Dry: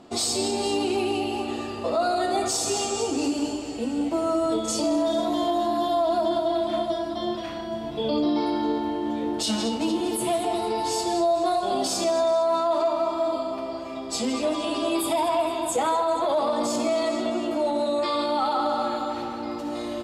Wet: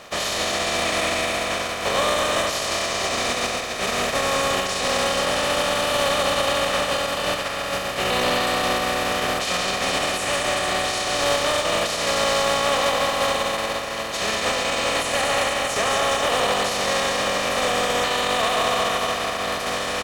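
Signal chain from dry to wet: spectral contrast lowered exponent 0.29; comb 1.4 ms, depth 42%; de-hum 203.8 Hz, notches 3; in parallel at +1 dB: limiter -19 dBFS, peak gain reduction 10.5 dB; on the sum: overdrive pedal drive 11 dB, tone 1900 Hz, clips at -5 dBFS; pitch shift -3 st; gain -1.5 dB

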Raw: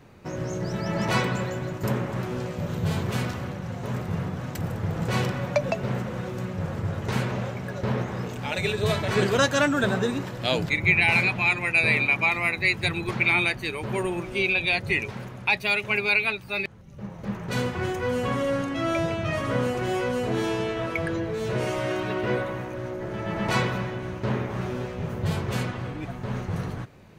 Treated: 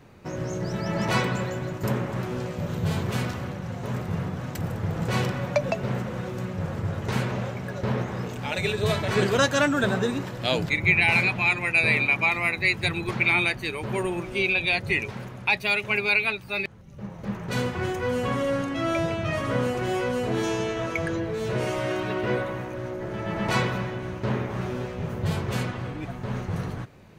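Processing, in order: 20.43–21.15 bell 6400 Hz +9.5 dB 0.33 oct

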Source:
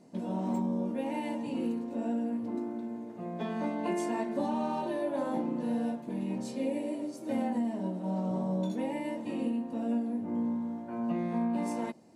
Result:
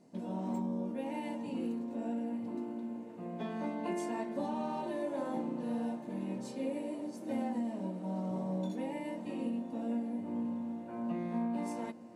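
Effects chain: diffused feedback echo 1.109 s, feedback 57%, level -15 dB; gain -4.5 dB

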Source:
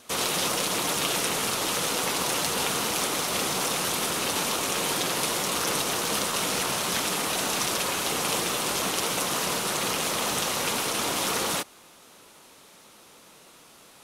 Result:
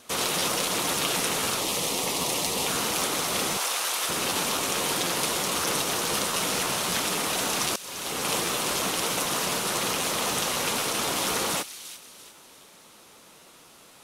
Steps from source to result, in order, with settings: 1.61–2.68 bell 1500 Hz -14 dB 0.4 oct; 3.57–4.09 HPF 660 Hz 12 dB/oct; 7.76–8.31 fade in; thin delay 0.344 s, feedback 38%, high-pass 2800 Hz, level -11 dB; crackling interface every 0.26 s, samples 512, repeat, from 0.39

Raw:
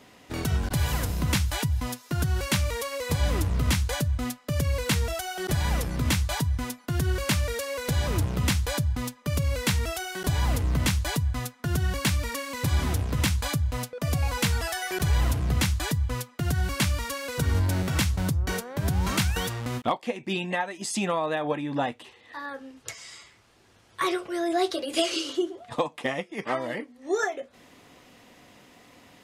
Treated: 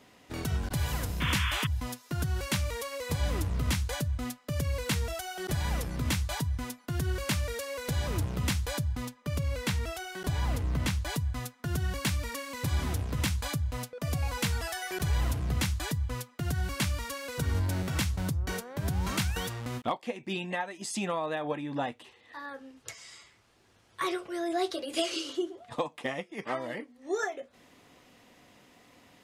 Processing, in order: 1.2–1.67 painted sound noise 930–3600 Hz -28 dBFS; 9.05–11.1 high shelf 5100 Hz -5 dB; gain -5 dB

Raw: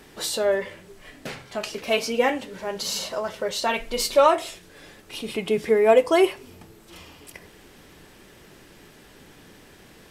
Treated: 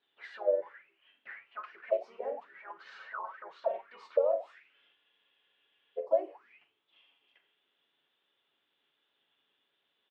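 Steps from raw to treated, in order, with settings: median filter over 3 samples; comb 7.2 ms, depth 39%; low-pass opened by the level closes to 990 Hz, open at -18 dBFS; compressor 2:1, threshold -33 dBFS, peak gain reduction 12.5 dB; low shelf 220 Hz -5.5 dB; flutter echo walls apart 7.3 m, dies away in 0.2 s; auto-wah 630–4000 Hz, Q 16, down, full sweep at -26.5 dBFS; dynamic EQ 510 Hz, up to +5 dB, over -52 dBFS, Q 2.8; harmoniser -3 st -4 dB; spectral freeze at 4.97, 1.02 s; gain +6.5 dB

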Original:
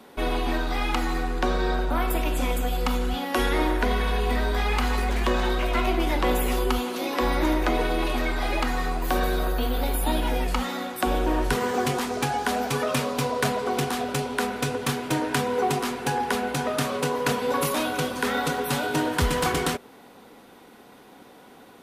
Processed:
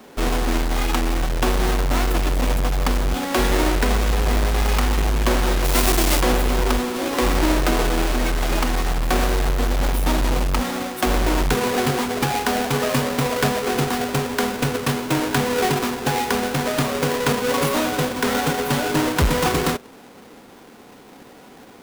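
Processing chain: half-waves squared off; 5.64–6.2 high shelf 6500 Hz -> 3400 Hz +12 dB

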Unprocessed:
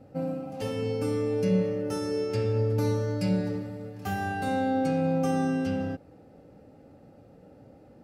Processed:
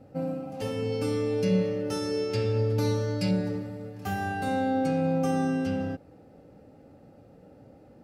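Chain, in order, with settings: 0.92–3.31 bell 3800 Hz +6.5 dB 1.3 oct

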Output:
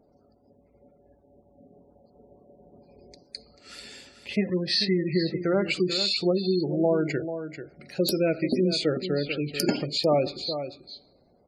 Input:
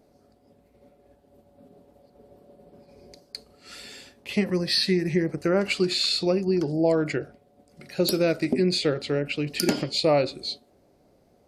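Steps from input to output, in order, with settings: echo 0.44 s -10 dB; on a send at -19 dB: reverb, pre-delay 47 ms; on the sum: spectral gate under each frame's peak -25 dB strong; gain -1.5 dB

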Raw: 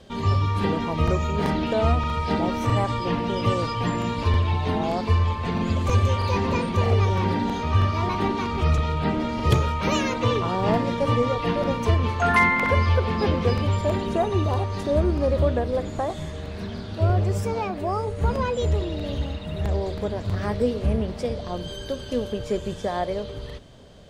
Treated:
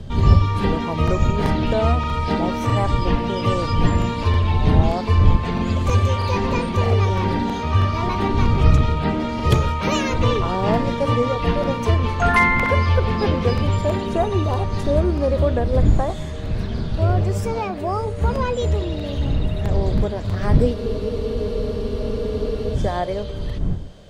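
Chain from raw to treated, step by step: wind noise 96 Hz -25 dBFS; spectral freeze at 20.76, 1.99 s; gain +2.5 dB

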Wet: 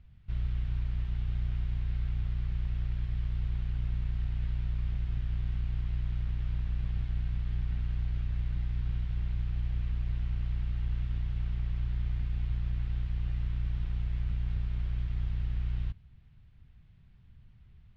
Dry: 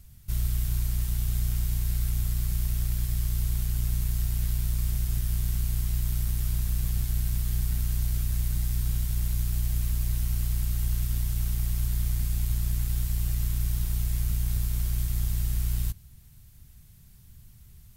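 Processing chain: LPF 3100 Hz 24 dB/oct; gain -4.5 dB

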